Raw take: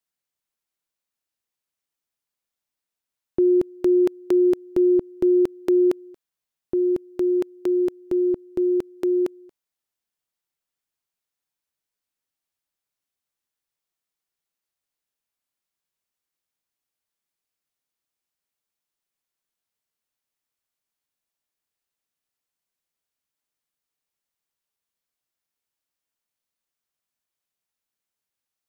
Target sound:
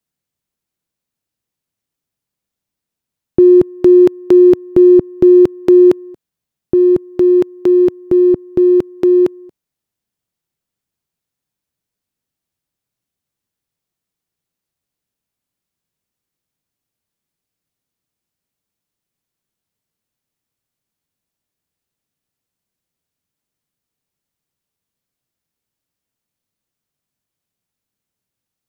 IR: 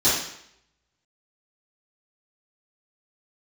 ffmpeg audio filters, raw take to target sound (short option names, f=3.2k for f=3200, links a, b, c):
-filter_complex "[0:a]equalizer=f=130:t=o:w=2.3:g=8.5,asplit=2[a][b];[b]adynamicsmooth=sensitivity=7.5:basefreq=780,volume=-3dB[c];[a][c]amix=inputs=2:normalize=0,volume=3.5dB"